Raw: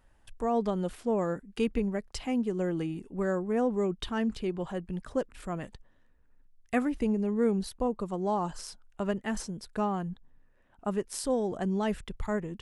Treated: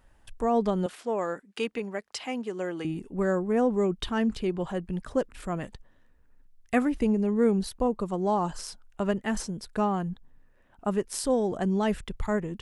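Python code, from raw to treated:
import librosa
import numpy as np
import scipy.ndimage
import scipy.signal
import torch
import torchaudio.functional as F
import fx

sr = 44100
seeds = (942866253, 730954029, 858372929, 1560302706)

y = fx.weighting(x, sr, curve='A', at=(0.86, 2.85))
y = y * librosa.db_to_amplitude(3.5)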